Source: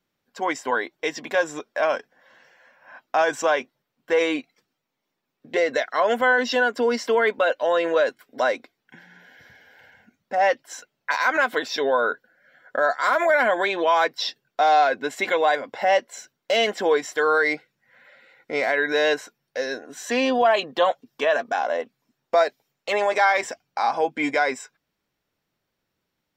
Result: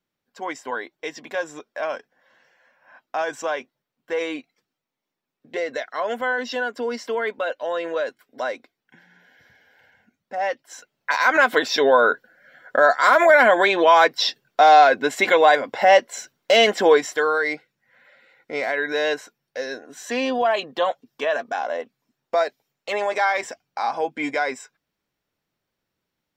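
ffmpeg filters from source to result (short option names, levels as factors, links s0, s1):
-af "volume=1.88,afade=t=in:st=10.64:d=0.92:silence=0.298538,afade=t=out:st=16.91:d=0.42:silence=0.421697"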